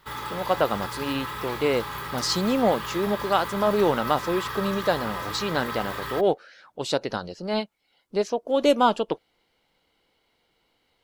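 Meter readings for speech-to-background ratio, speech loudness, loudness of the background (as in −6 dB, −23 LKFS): 7.0 dB, −26.0 LKFS, −33.0 LKFS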